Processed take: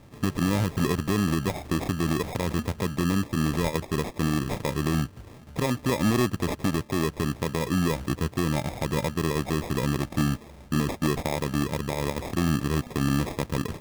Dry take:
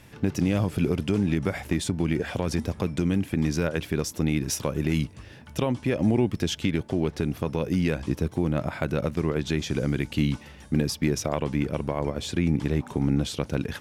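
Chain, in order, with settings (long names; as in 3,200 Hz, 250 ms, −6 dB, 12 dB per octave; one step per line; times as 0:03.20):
decimation without filtering 30×
gain into a clipping stage and back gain 16 dB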